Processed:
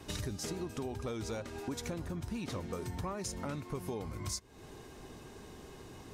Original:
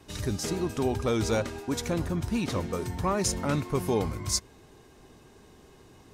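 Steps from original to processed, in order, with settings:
downward compressor 12 to 1, threshold −39 dBFS, peak gain reduction 17.5 dB
level +3.5 dB

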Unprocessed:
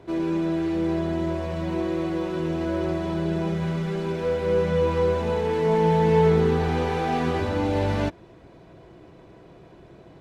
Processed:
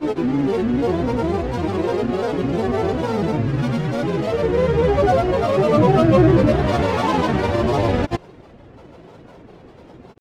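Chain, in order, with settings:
pitch vibrato 3.9 Hz 8 cents
granular cloud, pitch spread up and down by 7 semitones
backwards echo 169 ms −18 dB
level +6.5 dB

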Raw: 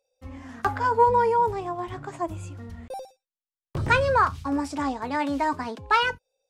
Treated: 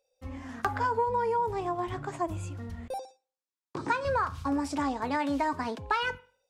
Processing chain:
on a send at −21 dB: convolution reverb, pre-delay 42 ms
on the sum: downward compressor 6 to 1, threshold −25 dBFS, peak gain reduction 11.5 dB
0:02.98–0:04.05: loudspeaker in its box 290–8,400 Hz, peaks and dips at 290 Hz +8 dB, 610 Hz −10 dB, 980 Hz +5 dB, 2,000 Hz −4 dB, 3,000 Hz −8 dB

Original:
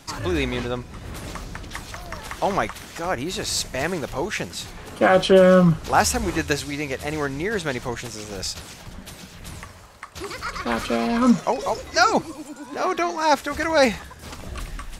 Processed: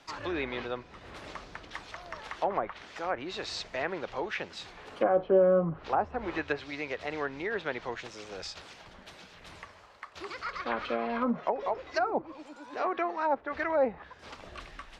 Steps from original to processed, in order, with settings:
three-way crossover with the lows and the highs turned down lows −12 dB, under 330 Hz, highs −18 dB, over 5,000 Hz
treble cut that deepens with the level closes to 750 Hz, closed at −17 dBFS
level −6 dB

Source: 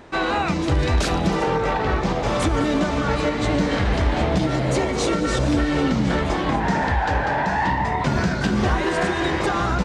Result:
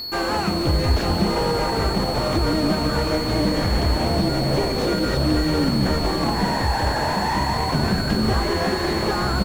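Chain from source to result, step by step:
steady tone 4,200 Hz −22 dBFS
echo with shifted repeats 187 ms, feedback 47%, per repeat −140 Hz, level −10.5 dB
wrong playback speed 24 fps film run at 25 fps
slew-rate limiting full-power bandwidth 130 Hz

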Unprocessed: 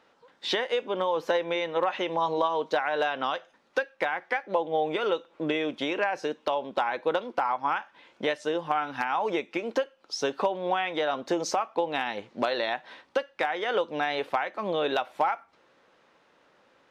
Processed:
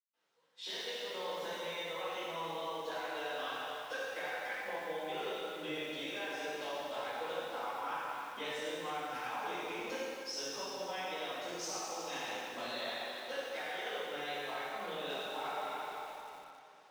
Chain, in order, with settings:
high-pass filter 61 Hz
first-order pre-emphasis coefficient 0.8
convolution reverb RT60 2.7 s, pre-delay 134 ms
speech leveller 0.5 s
feedback echo at a low word length 85 ms, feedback 55%, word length 9 bits, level −8.5 dB
level +3 dB

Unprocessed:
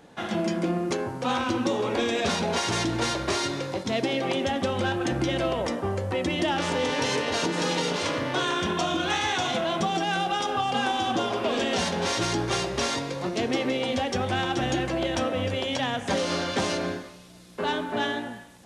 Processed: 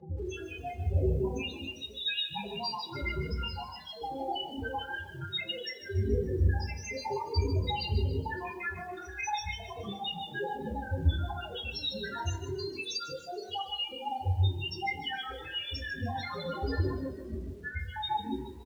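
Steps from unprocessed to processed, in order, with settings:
time-frequency cells dropped at random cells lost 83%
wind on the microphone 550 Hz −41 dBFS
spectral peaks only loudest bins 2
mains-hum notches 50/100/150/200/250 Hz
compressor whose output falls as the input rises −45 dBFS, ratio −1
high-shelf EQ 9,100 Hz −6.5 dB
comb filter 2.4 ms, depth 57%
echo with shifted repeats 141 ms, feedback 49%, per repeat +37 Hz, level −14.5 dB
convolution reverb RT60 0.30 s, pre-delay 3 ms, DRR −2.5 dB
feedback echo at a low word length 153 ms, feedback 35%, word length 9 bits, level −12.5 dB

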